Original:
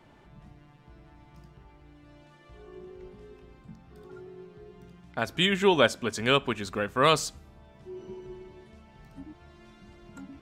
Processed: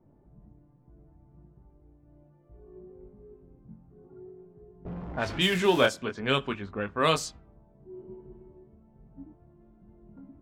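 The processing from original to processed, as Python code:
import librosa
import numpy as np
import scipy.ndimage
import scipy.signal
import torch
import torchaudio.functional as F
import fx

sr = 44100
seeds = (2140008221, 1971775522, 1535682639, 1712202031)

y = fx.zero_step(x, sr, step_db=-29.0, at=(4.85, 5.86))
y = fx.env_lowpass(y, sr, base_hz=460.0, full_db=-19.5)
y = fx.chorus_voices(y, sr, voices=2, hz=0.42, base_ms=21, depth_ms=2.8, mix_pct=30)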